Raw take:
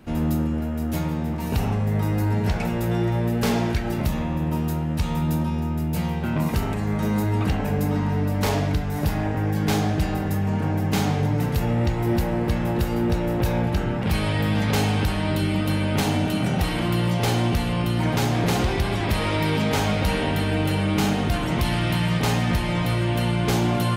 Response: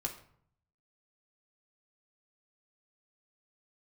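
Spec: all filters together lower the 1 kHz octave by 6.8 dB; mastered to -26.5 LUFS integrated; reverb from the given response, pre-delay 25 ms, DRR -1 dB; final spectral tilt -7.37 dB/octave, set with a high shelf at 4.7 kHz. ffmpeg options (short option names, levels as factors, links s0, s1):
-filter_complex "[0:a]equalizer=f=1000:t=o:g=-9,highshelf=f=4700:g=-8.5,asplit=2[s0][s1];[1:a]atrim=start_sample=2205,adelay=25[s2];[s1][s2]afir=irnorm=-1:irlink=0,volume=1[s3];[s0][s3]amix=inputs=2:normalize=0,volume=0.422"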